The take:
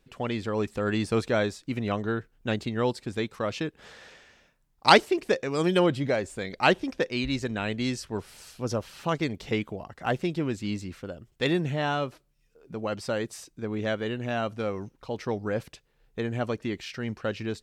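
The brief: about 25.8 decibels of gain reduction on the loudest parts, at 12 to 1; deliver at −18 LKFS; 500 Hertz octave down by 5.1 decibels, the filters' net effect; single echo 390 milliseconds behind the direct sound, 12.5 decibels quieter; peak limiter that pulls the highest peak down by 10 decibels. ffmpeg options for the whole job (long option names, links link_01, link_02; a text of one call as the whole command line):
ffmpeg -i in.wav -af "equalizer=frequency=500:width_type=o:gain=-6.5,acompressor=threshold=-39dB:ratio=12,alimiter=level_in=10dB:limit=-24dB:level=0:latency=1,volume=-10dB,aecho=1:1:390:0.237,volume=28dB" out.wav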